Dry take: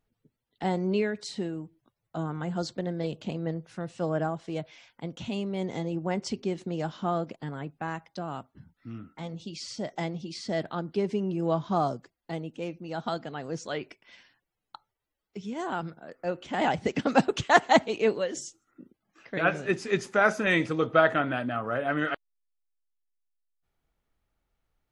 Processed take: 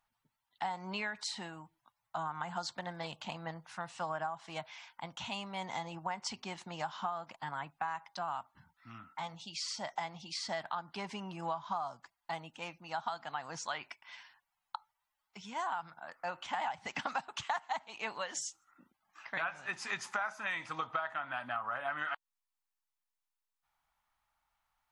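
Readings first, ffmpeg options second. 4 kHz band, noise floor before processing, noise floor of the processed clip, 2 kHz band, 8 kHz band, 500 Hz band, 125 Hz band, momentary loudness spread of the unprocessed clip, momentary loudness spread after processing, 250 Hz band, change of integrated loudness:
−4.0 dB, −84 dBFS, below −85 dBFS, −8.5 dB, −2.0 dB, −16.0 dB, −16.0 dB, 16 LU, 10 LU, −18.0 dB, −10.0 dB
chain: -af "lowshelf=frequency=620:width_type=q:width=3:gain=-13,acompressor=threshold=-34dB:ratio=12,volume=1dB"

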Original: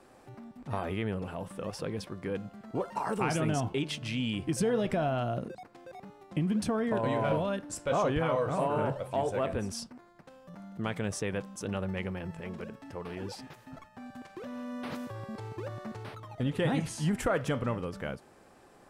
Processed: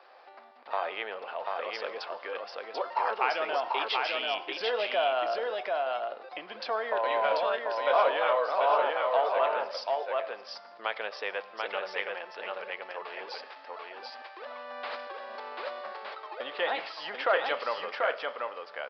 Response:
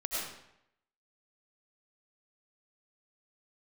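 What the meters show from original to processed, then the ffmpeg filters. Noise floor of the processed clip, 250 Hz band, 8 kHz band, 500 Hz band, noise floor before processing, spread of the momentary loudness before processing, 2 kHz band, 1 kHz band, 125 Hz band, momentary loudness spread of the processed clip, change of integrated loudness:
−50 dBFS, −18.5 dB, below −15 dB, +3.0 dB, −58 dBFS, 17 LU, +7.5 dB, +7.0 dB, below −35 dB, 15 LU, +2.0 dB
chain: -filter_complex "[0:a]highpass=frequency=570:width=0.5412,highpass=frequency=570:width=1.3066,aecho=1:1:739:0.708,asplit=2[link_01][link_02];[1:a]atrim=start_sample=2205[link_03];[link_02][link_03]afir=irnorm=-1:irlink=0,volume=-23.5dB[link_04];[link_01][link_04]amix=inputs=2:normalize=0,aresample=11025,aresample=44100,volume=5dB"

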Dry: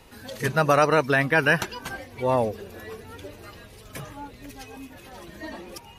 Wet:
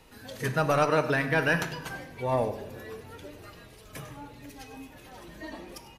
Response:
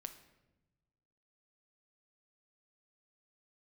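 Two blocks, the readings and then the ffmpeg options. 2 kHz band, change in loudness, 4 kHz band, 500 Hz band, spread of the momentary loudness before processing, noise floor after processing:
−5.5 dB, −5.0 dB, −4.5 dB, −4.5 dB, 22 LU, −51 dBFS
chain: -filter_complex "[0:a]acontrast=87,aecho=1:1:99:0.168[link_01];[1:a]atrim=start_sample=2205[link_02];[link_01][link_02]afir=irnorm=-1:irlink=0,volume=-7dB"

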